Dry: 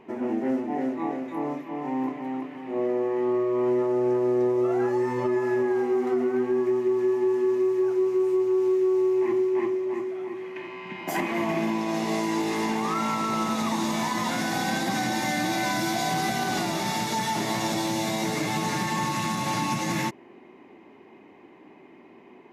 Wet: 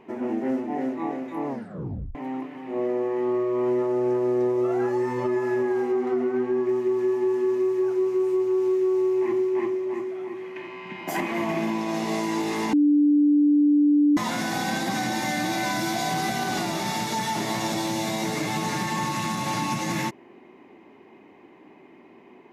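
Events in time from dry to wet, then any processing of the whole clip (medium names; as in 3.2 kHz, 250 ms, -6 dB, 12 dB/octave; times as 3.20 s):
1.47 s: tape stop 0.68 s
5.92–6.69 s: treble shelf 6.9 kHz -11 dB
12.73–14.17 s: bleep 293 Hz -15 dBFS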